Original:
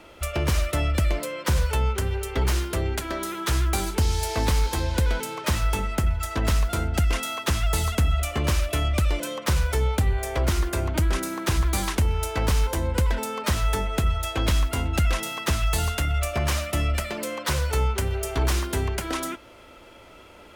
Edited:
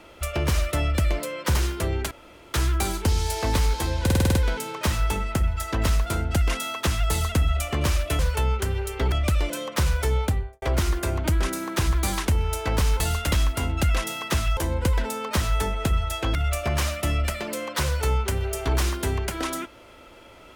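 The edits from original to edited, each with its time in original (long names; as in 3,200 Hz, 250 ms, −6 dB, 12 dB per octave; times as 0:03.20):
0:01.55–0:02.48: move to 0:08.82
0:03.04–0:03.47: fill with room tone
0:04.98: stutter 0.05 s, 7 plays
0:09.91–0:10.32: fade out and dull
0:12.70–0:14.48: swap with 0:15.73–0:16.05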